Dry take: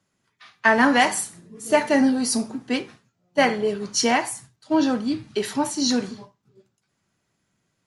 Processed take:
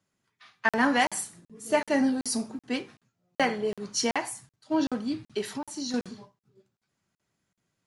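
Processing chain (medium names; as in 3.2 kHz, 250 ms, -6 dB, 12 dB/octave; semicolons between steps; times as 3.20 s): 5.41–5.94 s: compression 3:1, threshold -27 dBFS, peak gain reduction 8 dB; crackling interface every 0.38 s, samples 2048, zero, from 0.69 s; trim -6 dB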